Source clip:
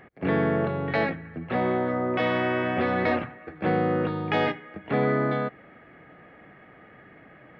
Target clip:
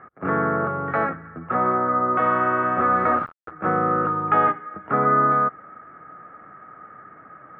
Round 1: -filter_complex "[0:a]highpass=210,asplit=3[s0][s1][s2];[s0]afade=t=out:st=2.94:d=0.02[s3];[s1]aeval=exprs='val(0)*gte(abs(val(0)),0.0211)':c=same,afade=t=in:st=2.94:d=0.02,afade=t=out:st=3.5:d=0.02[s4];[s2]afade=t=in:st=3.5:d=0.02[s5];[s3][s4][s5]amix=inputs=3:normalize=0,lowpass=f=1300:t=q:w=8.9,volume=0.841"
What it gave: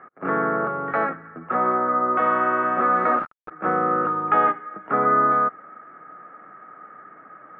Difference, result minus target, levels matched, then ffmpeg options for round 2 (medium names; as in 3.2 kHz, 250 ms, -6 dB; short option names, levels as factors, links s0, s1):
125 Hz band -7.0 dB
-filter_complex "[0:a]highpass=58,asplit=3[s0][s1][s2];[s0]afade=t=out:st=2.94:d=0.02[s3];[s1]aeval=exprs='val(0)*gte(abs(val(0)),0.0211)':c=same,afade=t=in:st=2.94:d=0.02,afade=t=out:st=3.5:d=0.02[s4];[s2]afade=t=in:st=3.5:d=0.02[s5];[s3][s4][s5]amix=inputs=3:normalize=0,lowpass=f=1300:t=q:w=8.9,volume=0.841"